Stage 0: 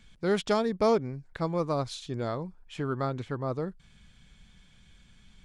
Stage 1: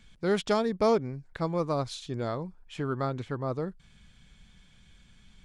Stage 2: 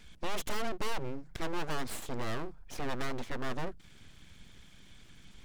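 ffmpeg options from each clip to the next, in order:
-af anull
-af "asoftclip=type=tanh:threshold=-29.5dB,bandreject=f=50:t=h:w=6,bandreject=f=100:t=h:w=6,bandreject=f=150:t=h:w=6,aeval=exprs='abs(val(0))':c=same,volume=4dB"

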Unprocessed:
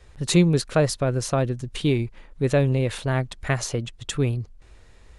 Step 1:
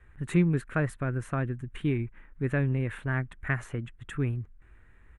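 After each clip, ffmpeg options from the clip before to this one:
-af "firequalizer=gain_entry='entry(310,0);entry(520,-9);entry(1600,6);entry(4800,-27);entry(8200,-11)':delay=0.05:min_phase=1,volume=-5.5dB"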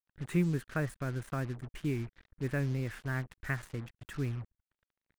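-af "acrusher=bits=6:mix=0:aa=0.5,volume=-5.5dB"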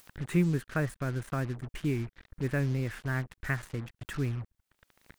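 -af "acompressor=mode=upward:threshold=-37dB:ratio=2.5,volume=3dB"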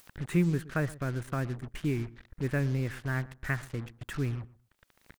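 -filter_complex "[0:a]asplit=2[a][b];[b]adelay=121,lowpass=f=1.4k:p=1,volume=-18.5dB,asplit=2[c][d];[d]adelay=121,lowpass=f=1.4k:p=1,volume=0.18[e];[a][c][e]amix=inputs=3:normalize=0"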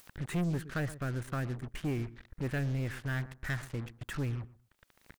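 -af "asoftclip=type=tanh:threshold=-27.5dB"

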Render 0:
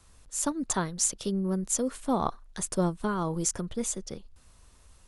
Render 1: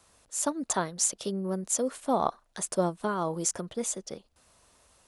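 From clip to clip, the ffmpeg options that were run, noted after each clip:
-af "highpass=f=250:p=1,equalizer=f=640:w=1.9:g=5.5"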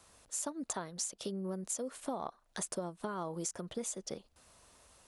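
-af "acompressor=threshold=-35dB:ratio=10"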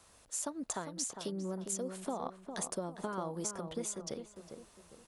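-filter_complex "[0:a]asplit=2[a][b];[b]adelay=404,lowpass=f=1.5k:p=1,volume=-7dB,asplit=2[c][d];[d]adelay=404,lowpass=f=1.5k:p=1,volume=0.38,asplit=2[e][f];[f]adelay=404,lowpass=f=1.5k:p=1,volume=0.38,asplit=2[g][h];[h]adelay=404,lowpass=f=1.5k:p=1,volume=0.38[i];[a][c][e][g][i]amix=inputs=5:normalize=0"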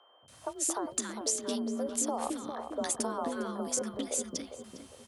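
-filter_complex "[0:a]acrossover=split=360|1300[a][b][c];[a]adelay=220[d];[c]adelay=280[e];[d][b][e]amix=inputs=3:normalize=0,aeval=exprs='val(0)+0.000316*sin(2*PI*3100*n/s)':c=same,afreqshift=42,volume=6.5dB"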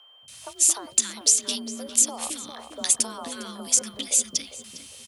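-af "firequalizer=gain_entry='entry(180,0);entry(330,-6);entry(1600,2);entry(2500,13)':delay=0.05:min_phase=1"

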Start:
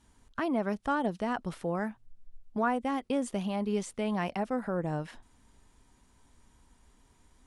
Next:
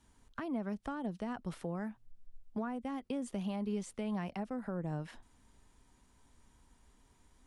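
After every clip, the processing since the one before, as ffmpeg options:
-filter_complex "[0:a]acrossover=split=250[a][b];[b]acompressor=threshold=-37dB:ratio=5[c];[a][c]amix=inputs=2:normalize=0,volume=-3dB"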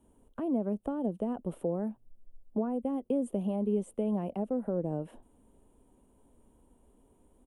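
-af "firequalizer=gain_entry='entry(140,0);entry(210,6);entry(370,9);entry(530,11);entry(750,3);entry(1300,-7);entry(1900,-14);entry(2900,-6);entry(4700,-22);entry(9000,1)':delay=0.05:min_phase=1"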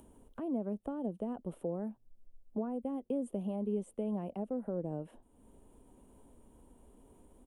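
-af "acompressor=mode=upward:threshold=-44dB:ratio=2.5,volume=-5dB"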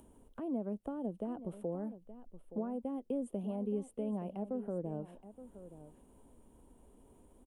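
-af "aecho=1:1:872:0.2,volume=-1.5dB"

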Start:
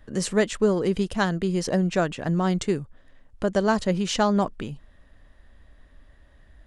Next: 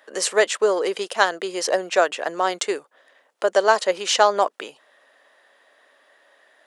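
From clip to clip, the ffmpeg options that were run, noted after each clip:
-af "highpass=f=460:w=0.5412,highpass=f=460:w=1.3066,volume=7.5dB"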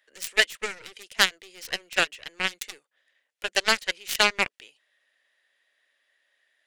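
-af "aeval=exprs='0.891*(cos(1*acos(clip(val(0)/0.891,-1,1)))-cos(1*PI/2))+0.00708*(cos(5*acos(clip(val(0)/0.891,-1,1)))-cos(5*PI/2))+0.0178*(cos(6*acos(clip(val(0)/0.891,-1,1)))-cos(6*PI/2))+0.158*(cos(7*acos(clip(val(0)/0.891,-1,1)))-cos(7*PI/2))+0.0282*(cos(8*acos(clip(val(0)/0.891,-1,1)))-cos(8*PI/2))':c=same,highshelf=f=1.5k:t=q:w=1.5:g=10.5,volume=-8dB"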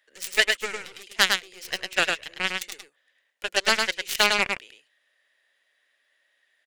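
-af "aecho=1:1:104:0.631"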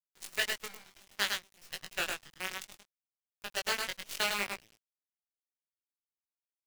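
-af "acrusher=bits=4:dc=4:mix=0:aa=0.000001,flanger=delay=18:depth=3.4:speed=0.62,volume=-8.5dB"

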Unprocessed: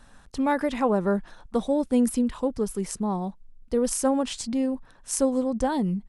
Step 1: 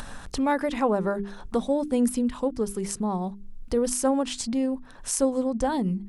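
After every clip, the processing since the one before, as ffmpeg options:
-af "bandreject=f=50:t=h:w=6,bandreject=f=100:t=h:w=6,bandreject=f=150:t=h:w=6,bandreject=f=200:t=h:w=6,bandreject=f=250:t=h:w=6,bandreject=f=300:t=h:w=6,bandreject=f=350:t=h:w=6,bandreject=f=400:t=h:w=6,acompressor=mode=upward:threshold=-25dB:ratio=2.5"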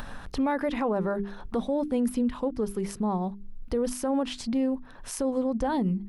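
-af "equalizer=f=7.8k:t=o:w=1.1:g=-12,alimiter=limit=-19dB:level=0:latency=1:release=27"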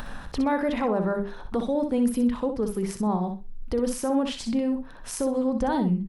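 -af "aecho=1:1:62|124|186:0.422|0.0759|0.0137,volume=1.5dB"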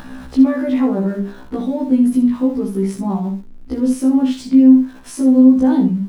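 -af "aeval=exprs='val(0)+0.5*0.00794*sgn(val(0))':c=same,equalizer=f=260:w=2:g=14,afftfilt=real='re*1.73*eq(mod(b,3),0)':imag='im*1.73*eq(mod(b,3),0)':win_size=2048:overlap=0.75,volume=2dB"

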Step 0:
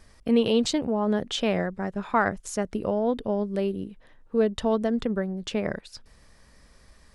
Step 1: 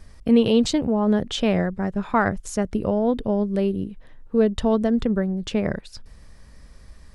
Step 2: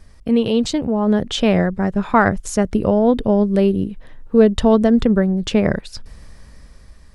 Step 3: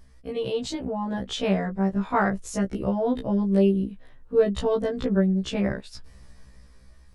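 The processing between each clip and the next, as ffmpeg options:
-af "lowshelf=f=200:g=9.5,volume=1.5dB"
-af "dynaudnorm=f=230:g=9:m=11.5dB"
-af "afftfilt=real='re*1.73*eq(mod(b,3),0)':imag='im*1.73*eq(mod(b,3),0)':win_size=2048:overlap=0.75,volume=-6dB"

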